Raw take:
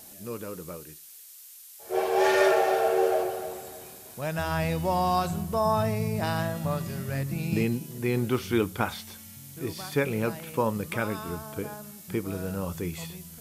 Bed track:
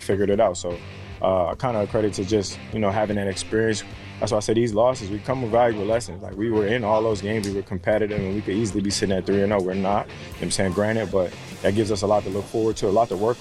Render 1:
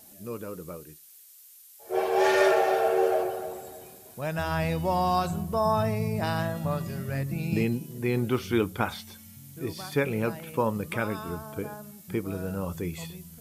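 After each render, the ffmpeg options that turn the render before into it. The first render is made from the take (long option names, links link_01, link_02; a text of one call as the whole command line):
ffmpeg -i in.wav -af "afftdn=noise_reduction=6:noise_floor=-48" out.wav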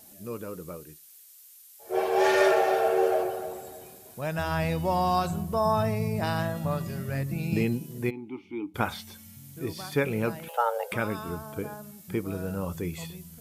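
ffmpeg -i in.wav -filter_complex "[0:a]asplit=3[link_01][link_02][link_03];[link_01]afade=type=out:start_time=8.09:duration=0.02[link_04];[link_02]asplit=3[link_05][link_06][link_07];[link_05]bandpass=frequency=300:width_type=q:width=8,volume=0dB[link_08];[link_06]bandpass=frequency=870:width_type=q:width=8,volume=-6dB[link_09];[link_07]bandpass=frequency=2240:width_type=q:width=8,volume=-9dB[link_10];[link_08][link_09][link_10]amix=inputs=3:normalize=0,afade=type=in:start_time=8.09:duration=0.02,afade=type=out:start_time=8.74:duration=0.02[link_11];[link_03]afade=type=in:start_time=8.74:duration=0.02[link_12];[link_04][link_11][link_12]amix=inputs=3:normalize=0,asettb=1/sr,asplit=3[link_13][link_14][link_15];[link_13]atrim=end=10.484[link_16];[link_14]atrim=start=10.48:end=10.92,asetpts=PTS-STARTPTS,afade=type=in:duration=0.004:curve=qsin,afade=type=out:start_time=0.436:duration=0.004:curve=qsin,afreqshift=350[link_17];[link_15]atrim=start=10.916[link_18];[link_16][link_17]acrossfade=duration=0.004:curve1=hsin:curve2=qsin[link_19];[link_19][link_18]acrossfade=duration=0.004:curve1=qsin:curve2=hsin" out.wav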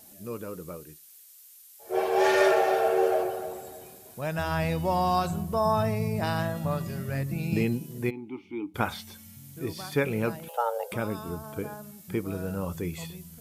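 ffmpeg -i in.wav -filter_complex "[0:a]asettb=1/sr,asplit=3[link_01][link_02][link_03];[link_01]atrim=end=10.364[link_04];[link_02]atrim=start=10.36:end=11.44,asetpts=PTS-STARTPTS,afade=type=in:duration=0.004:curve=qsin,afade=type=out:start_time=1.076:duration=0.004:curve=qsin,equalizer=frequency=1900:width_type=o:width=1.4:gain=-7[link_05];[link_03]atrim=start=11.436[link_06];[link_04][link_05]acrossfade=duration=0.004:curve1=hsin:curve2=qsin[link_07];[link_07][link_06]acrossfade=duration=0.004:curve1=qsin:curve2=hsin" out.wav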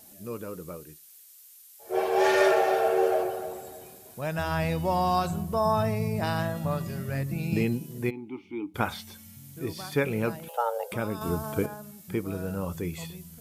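ffmpeg -i in.wav -filter_complex "[0:a]asettb=1/sr,asplit=3[link_01][link_02][link_03];[link_01]atrim=end=11.214[link_04];[link_02]atrim=start=11.21:end=11.66,asetpts=PTS-STARTPTS,afade=type=in:duration=0.004:curve=qsin,afade=type=out:start_time=0.446:duration=0.004:curve=qsin,acontrast=62[link_05];[link_03]atrim=start=11.656[link_06];[link_04][link_05]acrossfade=duration=0.004:curve1=hsin:curve2=qsin[link_07];[link_07][link_06]acrossfade=duration=0.004:curve1=qsin:curve2=hsin" out.wav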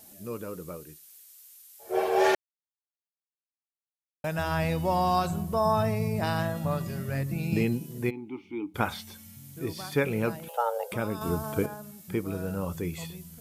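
ffmpeg -i in.wav -filter_complex "[0:a]asplit=3[link_01][link_02][link_03];[link_01]atrim=end=2.35,asetpts=PTS-STARTPTS,afade=type=out:start_time=2.346:duration=0.004:curve=hsin[link_04];[link_02]atrim=start=2.35:end=4.24,asetpts=PTS-STARTPTS,volume=0[link_05];[link_03]atrim=start=4.24,asetpts=PTS-STARTPTS,afade=type=in:duration=0.004:curve=hsin[link_06];[link_04][link_05][link_06]concat=n=3:v=0:a=1" out.wav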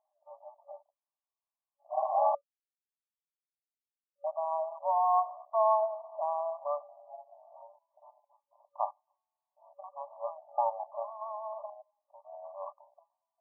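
ffmpeg -i in.wav -af "afwtdn=0.0158,afftfilt=real='re*between(b*sr/4096,560,1200)':imag='im*between(b*sr/4096,560,1200)':win_size=4096:overlap=0.75" out.wav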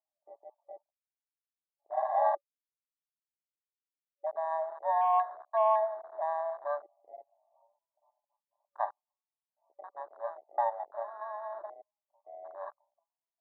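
ffmpeg -i in.wav -af "afwtdn=0.01,bass=frequency=250:gain=-9,treble=frequency=4000:gain=-1" out.wav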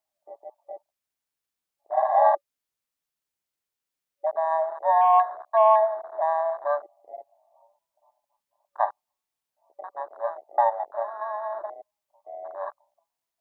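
ffmpeg -i in.wav -af "volume=8.5dB" out.wav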